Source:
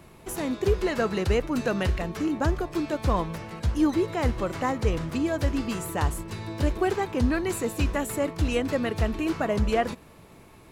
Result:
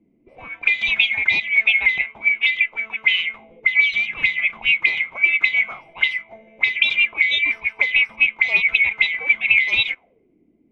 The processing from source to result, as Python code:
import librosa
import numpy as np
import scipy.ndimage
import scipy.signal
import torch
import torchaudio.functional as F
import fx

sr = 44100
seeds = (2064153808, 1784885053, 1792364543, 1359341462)

y = fx.band_swap(x, sr, width_hz=2000)
y = fx.envelope_lowpass(y, sr, base_hz=280.0, top_hz=3900.0, q=5.6, full_db=-20.0, direction='up')
y = y * librosa.db_to_amplitude(-1.0)